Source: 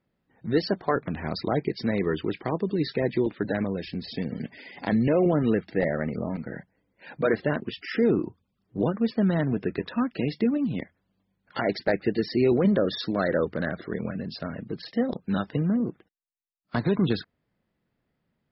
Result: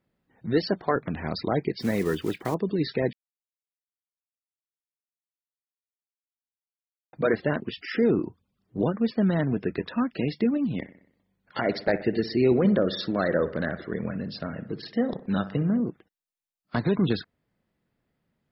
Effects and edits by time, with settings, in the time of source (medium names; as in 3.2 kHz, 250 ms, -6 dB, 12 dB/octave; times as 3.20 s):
1.80–2.56 s: block-companded coder 5-bit
3.13–7.13 s: mute
10.76–15.80 s: bucket-brigade echo 62 ms, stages 1024, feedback 53%, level -14.5 dB